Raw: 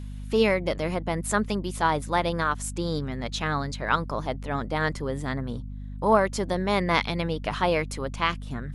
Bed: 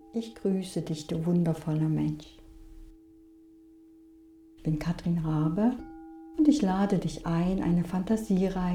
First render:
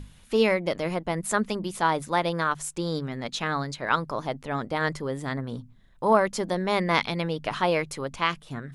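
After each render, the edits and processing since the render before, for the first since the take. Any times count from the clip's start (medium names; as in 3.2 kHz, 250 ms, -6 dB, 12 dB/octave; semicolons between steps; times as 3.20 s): hum notches 50/100/150/200/250 Hz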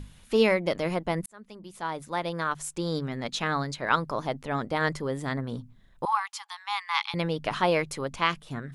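1.26–3.04 s: fade in; 6.05–7.14 s: rippled Chebyshev high-pass 800 Hz, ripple 6 dB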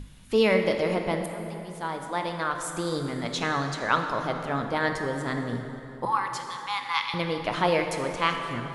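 plate-style reverb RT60 3.1 s, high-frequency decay 0.65×, DRR 4 dB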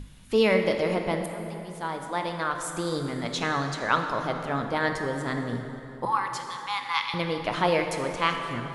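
no audible change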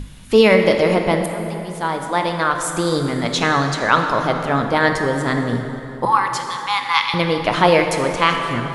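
trim +10 dB; peak limiter -1 dBFS, peak gain reduction 2.5 dB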